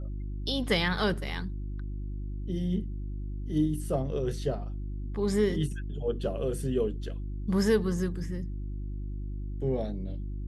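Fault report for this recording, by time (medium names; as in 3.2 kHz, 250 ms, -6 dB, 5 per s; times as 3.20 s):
hum 50 Hz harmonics 7 -35 dBFS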